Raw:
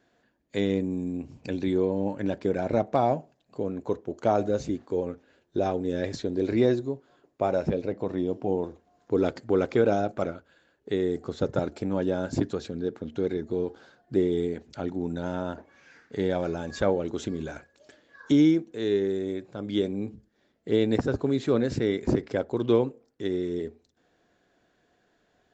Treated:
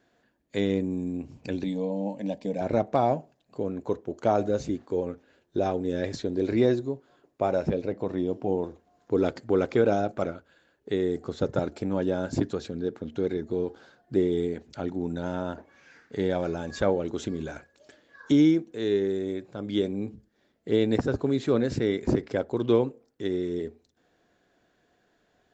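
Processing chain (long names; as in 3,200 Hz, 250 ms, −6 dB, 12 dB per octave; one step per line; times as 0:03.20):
0:01.64–0:02.61: phaser with its sweep stopped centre 370 Hz, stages 6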